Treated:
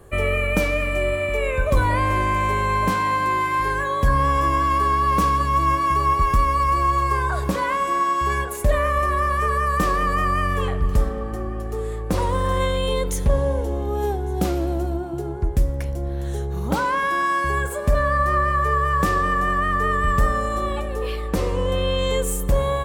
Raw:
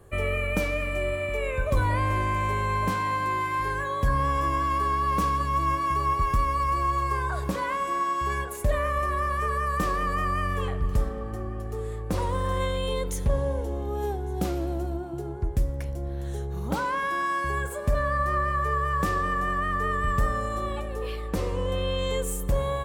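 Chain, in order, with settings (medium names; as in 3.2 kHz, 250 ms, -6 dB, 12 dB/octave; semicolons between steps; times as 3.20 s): peaking EQ 110 Hz -5 dB 0.37 oct; trim +6 dB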